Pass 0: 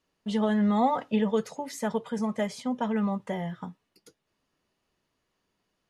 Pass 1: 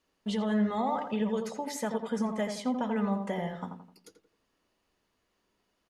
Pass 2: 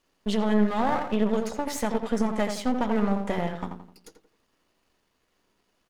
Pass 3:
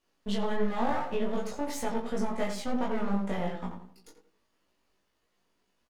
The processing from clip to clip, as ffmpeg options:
-filter_complex "[0:a]equalizer=f=140:w=2.4:g=-8,alimiter=limit=0.0668:level=0:latency=1:release=165,asplit=2[s0][s1];[s1]adelay=85,lowpass=f=1700:p=1,volume=0.531,asplit=2[s2][s3];[s3]adelay=85,lowpass=f=1700:p=1,volume=0.41,asplit=2[s4][s5];[s5]adelay=85,lowpass=f=1700:p=1,volume=0.41,asplit=2[s6][s7];[s7]adelay=85,lowpass=f=1700:p=1,volume=0.41,asplit=2[s8][s9];[s9]adelay=85,lowpass=f=1700:p=1,volume=0.41[s10];[s2][s4][s6][s8][s10]amix=inputs=5:normalize=0[s11];[s0][s11]amix=inputs=2:normalize=0,volume=1.12"
-af "aeval=exprs='if(lt(val(0),0),0.251*val(0),val(0))':c=same,volume=2.51"
-filter_complex "[0:a]flanger=delay=15:depth=2.7:speed=2.8,asplit=2[s0][s1];[s1]adelay=21,volume=0.75[s2];[s0][s2]amix=inputs=2:normalize=0,volume=0.668"

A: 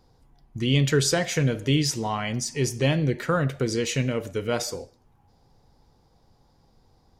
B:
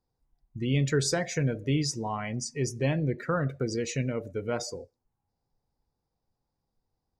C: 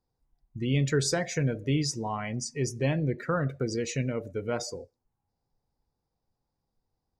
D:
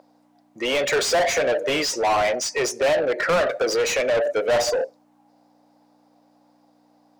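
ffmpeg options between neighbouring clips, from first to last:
-af "afftdn=nr=17:nf=-36,equalizer=f=3100:w=5.9:g=-11,volume=0.596"
-af anull
-filter_complex "[0:a]aeval=exprs='val(0)+0.00282*(sin(2*PI*60*n/s)+sin(2*PI*2*60*n/s)/2+sin(2*PI*3*60*n/s)/3+sin(2*PI*4*60*n/s)/4+sin(2*PI*5*60*n/s)/5)':c=same,highpass=f=610:t=q:w=3.8,asplit=2[s0][s1];[s1]highpass=f=720:p=1,volume=28.2,asoftclip=type=tanh:threshold=0.224[s2];[s0][s2]amix=inputs=2:normalize=0,lowpass=f=3700:p=1,volume=0.501"

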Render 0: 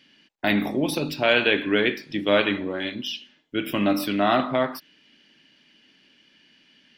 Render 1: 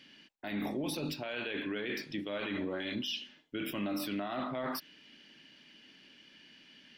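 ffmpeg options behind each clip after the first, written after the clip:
-af "areverse,acompressor=threshold=0.0398:ratio=6,areverse,alimiter=level_in=1.58:limit=0.0631:level=0:latency=1:release=22,volume=0.631"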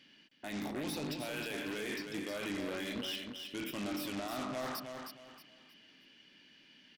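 -filter_complex "[0:a]aeval=exprs='0.0422*(cos(1*acos(clip(val(0)/0.0422,-1,1)))-cos(1*PI/2))+0.015*(cos(3*acos(clip(val(0)/0.0422,-1,1)))-cos(3*PI/2))+0.015*(cos(5*acos(clip(val(0)/0.0422,-1,1)))-cos(5*PI/2))+0.00668*(cos(7*acos(clip(val(0)/0.0422,-1,1)))-cos(7*PI/2))':c=same,asplit=2[s0][s1];[s1]aecho=0:1:314|628|942|1256:0.501|0.145|0.0421|0.0122[s2];[s0][s2]amix=inputs=2:normalize=0"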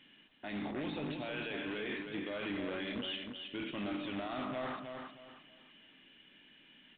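-ar 8000 -c:a pcm_alaw

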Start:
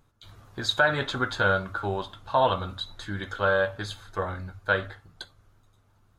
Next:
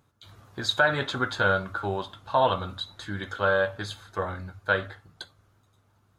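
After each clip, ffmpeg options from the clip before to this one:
-af "highpass=72"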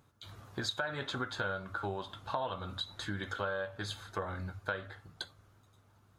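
-af "acompressor=threshold=0.02:ratio=5"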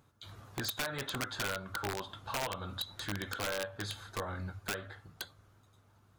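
-af "aeval=exprs='(mod(23.7*val(0)+1,2)-1)/23.7':c=same"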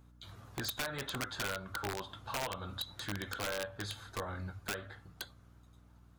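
-af "aeval=exprs='val(0)+0.00126*(sin(2*PI*60*n/s)+sin(2*PI*2*60*n/s)/2+sin(2*PI*3*60*n/s)/3+sin(2*PI*4*60*n/s)/4+sin(2*PI*5*60*n/s)/5)':c=same,volume=0.841"

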